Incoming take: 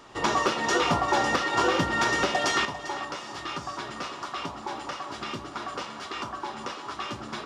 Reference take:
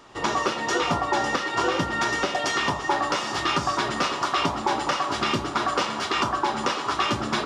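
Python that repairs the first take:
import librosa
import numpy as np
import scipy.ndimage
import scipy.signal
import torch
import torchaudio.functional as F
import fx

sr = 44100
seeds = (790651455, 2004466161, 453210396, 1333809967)

y = fx.fix_declip(x, sr, threshold_db=-15.0)
y = fx.fix_declick_ar(y, sr, threshold=6.5)
y = fx.fix_echo_inverse(y, sr, delay_ms=397, level_db=-14.0)
y = fx.fix_level(y, sr, at_s=2.65, step_db=10.5)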